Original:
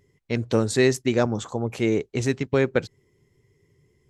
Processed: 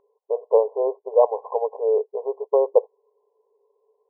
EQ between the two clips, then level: brick-wall FIR band-pass 410–1100 Hz; +8.0 dB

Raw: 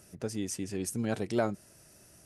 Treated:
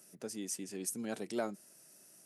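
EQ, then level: HPF 170 Hz 24 dB/oct; high shelf 6100 Hz +9.5 dB; -7.0 dB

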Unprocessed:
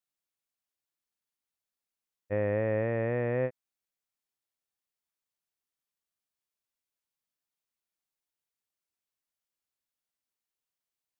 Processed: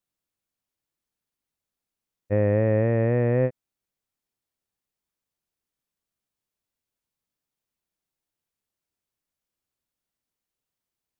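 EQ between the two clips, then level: low shelf 480 Hz +10 dB; +1.5 dB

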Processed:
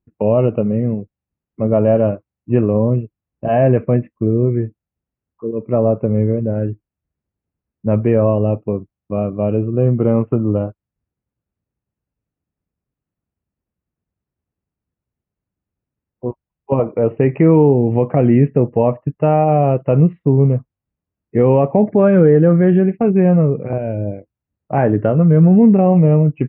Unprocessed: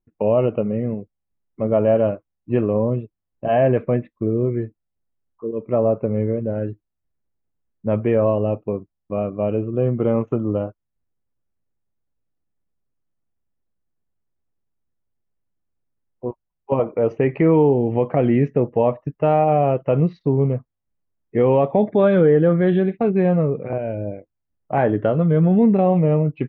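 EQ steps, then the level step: HPF 50 Hz; elliptic low-pass 2800 Hz, stop band 40 dB; low shelf 310 Hz +8.5 dB; +1.0 dB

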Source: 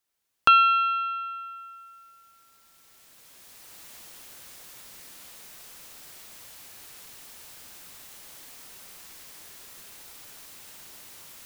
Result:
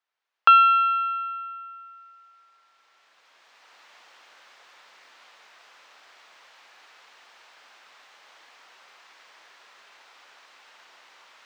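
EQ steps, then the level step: HPF 880 Hz 12 dB/oct; air absorption 170 m; high shelf 2100 Hz -9 dB; +7.5 dB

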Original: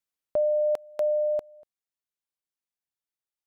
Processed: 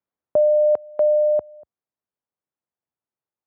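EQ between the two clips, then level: HPF 67 Hz 24 dB/oct; LPF 1100 Hz 12 dB/oct; +8.0 dB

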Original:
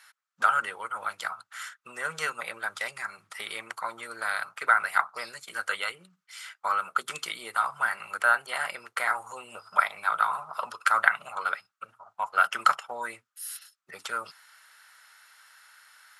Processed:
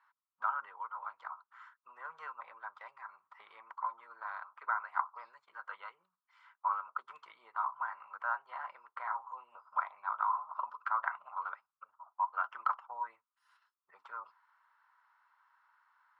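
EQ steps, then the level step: band-pass 1000 Hz, Q 7.3; air absorption 93 m; +1.0 dB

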